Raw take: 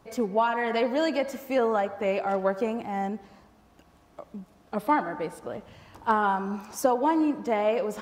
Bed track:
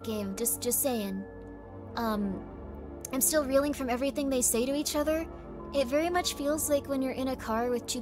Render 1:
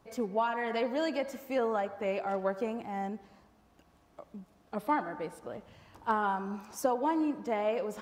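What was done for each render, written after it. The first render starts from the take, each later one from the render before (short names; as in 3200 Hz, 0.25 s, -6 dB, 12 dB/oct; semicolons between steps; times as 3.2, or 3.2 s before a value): gain -6 dB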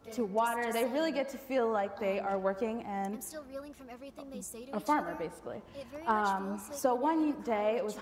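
add bed track -17.5 dB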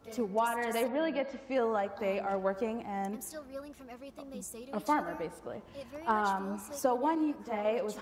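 0.87–1.54 LPF 2500 Hz -> 6600 Hz 24 dB/oct; 7.15–7.65 ensemble effect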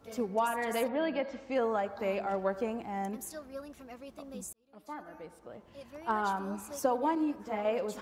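4.53–6.51 fade in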